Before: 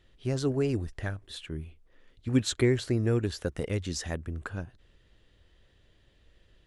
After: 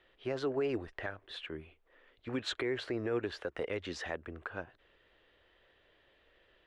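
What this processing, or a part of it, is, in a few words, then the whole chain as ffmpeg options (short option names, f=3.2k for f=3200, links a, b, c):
DJ mixer with the lows and highs turned down: -filter_complex "[0:a]acrossover=split=370 3400:gain=0.112 1 0.0631[a][b][c];[a][b][c]amix=inputs=3:normalize=0,alimiter=level_in=5dB:limit=-24dB:level=0:latency=1:release=113,volume=-5dB,volume=4dB"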